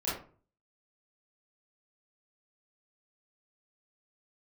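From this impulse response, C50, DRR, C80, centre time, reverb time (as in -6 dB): 2.5 dB, -10.5 dB, 9.0 dB, 48 ms, 0.40 s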